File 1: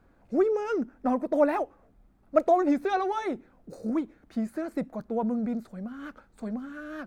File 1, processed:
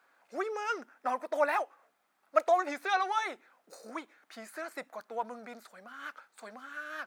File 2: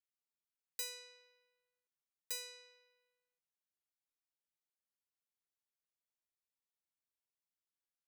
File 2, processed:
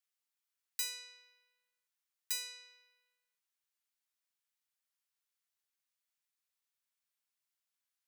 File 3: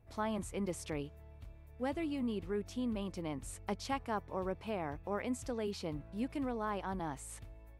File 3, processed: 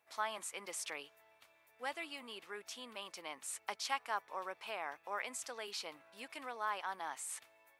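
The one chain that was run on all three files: high-pass 1.1 kHz 12 dB/octave; trim +5 dB

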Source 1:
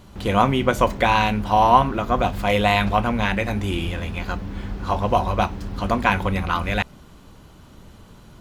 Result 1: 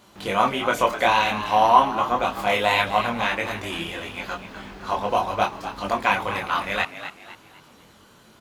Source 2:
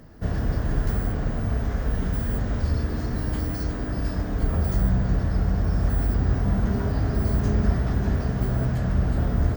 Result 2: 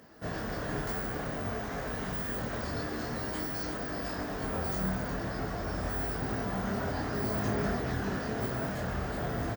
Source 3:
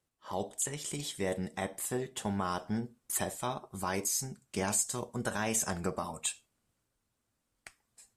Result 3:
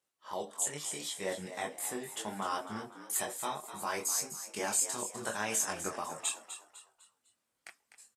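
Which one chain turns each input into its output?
high-pass 540 Hz 6 dB/octave; chorus voices 4, 0.49 Hz, delay 23 ms, depth 4.6 ms; on a send: frequency-shifting echo 251 ms, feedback 38%, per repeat +75 Hz, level -11 dB; on the sum: trim +3.5 dB

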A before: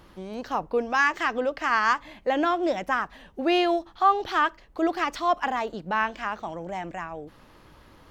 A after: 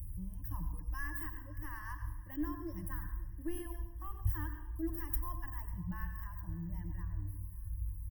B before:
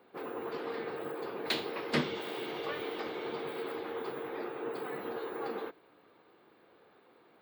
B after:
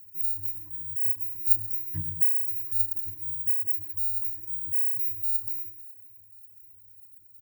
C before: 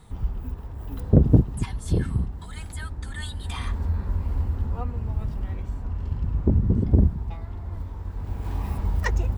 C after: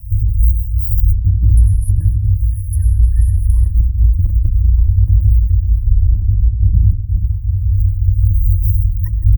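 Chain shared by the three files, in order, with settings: high-pass 86 Hz 6 dB/octave; reverb removal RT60 2 s; saturation -10.5 dBFS; inverse Chebyshev band-stop 220–7500 Hz, stop band 50 dB; peaking EQ 280 Hz +12.5 dB 0.56 oct; de-hum 122.5 Hz, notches 11; on a send: feedback delay 545 ms, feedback 56%, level -21 dB; on the sum: plate-style reverb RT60 0.73 s, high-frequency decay 0.75×, pre-delay 80 ms, DRR 7 dB; compressor with a negative ratio -37 dBFS, ratio -1; rippled EQ curve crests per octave 1.2, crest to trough 17 dB; loudness maximiser +24.5 dB; trim -1 dB

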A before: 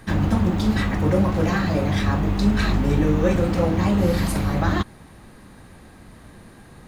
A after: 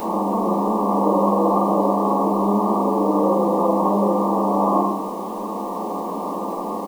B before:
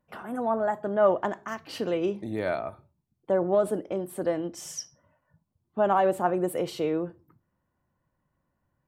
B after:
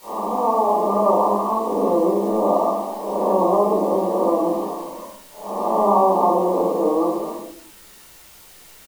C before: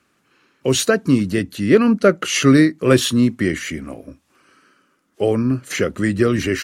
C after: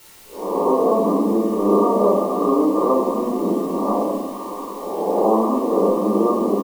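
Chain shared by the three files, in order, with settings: reverse spectral sustain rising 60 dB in 0.64 s; level rider gain up to 12 dB; on a send: frequency-shifting echo 134 ms, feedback 43%, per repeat +63 Hz, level -22 dB; on the sum: expander -39 dBFS; brick-wall FIR band-pass 190–1200 Hz; tilt EQ +4 dB/octave; feedback comb 510 Hz, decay 0.29 s, harmonics odd, mix 40%; flange 0.71 Hz, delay 8.3 ms, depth 3.9 ms, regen -39%; in parallel at -3 dB: compression 6:1, threshold -39 dBFS; on the sum: word length cut 12-bit, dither triangular; simulated room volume 480 m³, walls furnished, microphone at 4.4 m; spectrum-flattening compressor 2:1

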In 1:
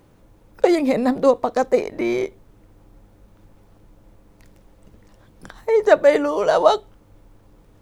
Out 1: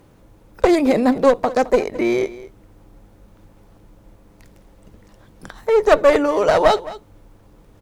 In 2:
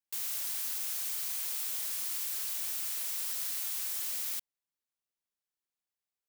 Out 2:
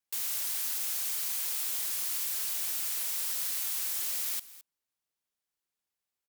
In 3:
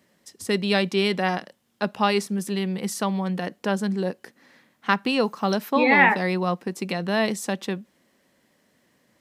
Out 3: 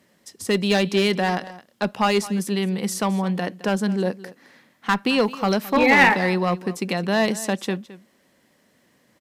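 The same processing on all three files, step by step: one-sided clip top -15.5 dBFS; delay 215 ms -17.5 dB; trim +3 dB

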